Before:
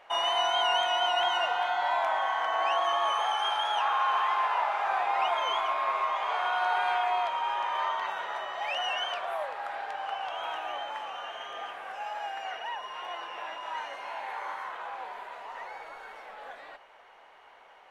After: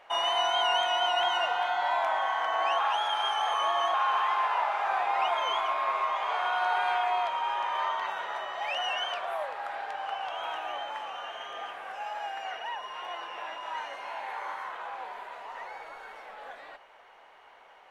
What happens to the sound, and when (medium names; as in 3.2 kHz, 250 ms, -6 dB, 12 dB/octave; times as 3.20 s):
2.79–3.94 s: reverse